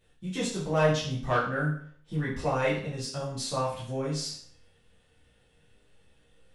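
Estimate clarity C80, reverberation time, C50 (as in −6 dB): 9.0 dB, 0.55 s, 5.0 dB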